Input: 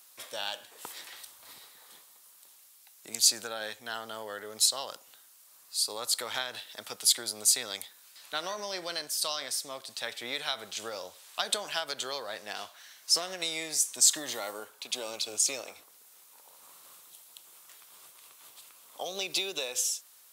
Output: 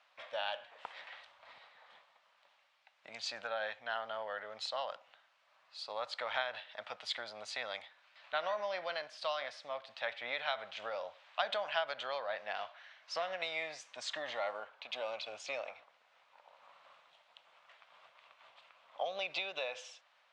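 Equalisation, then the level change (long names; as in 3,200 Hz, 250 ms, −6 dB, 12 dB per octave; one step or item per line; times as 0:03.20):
transistor ladder low-pass 3,300 Hz, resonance 25%
low shelf with overshoot 480 Hz −7 dB, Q 3
+3.0 dB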